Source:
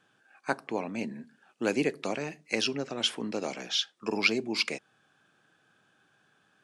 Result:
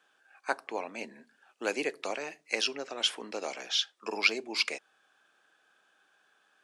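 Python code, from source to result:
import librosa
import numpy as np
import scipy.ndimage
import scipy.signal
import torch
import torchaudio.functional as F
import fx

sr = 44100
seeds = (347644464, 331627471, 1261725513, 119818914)

y = scipy.signal.sosfilt(scipy.signal.butter(2, 480.0, 'highpass', fs=sr, output='sos'), x)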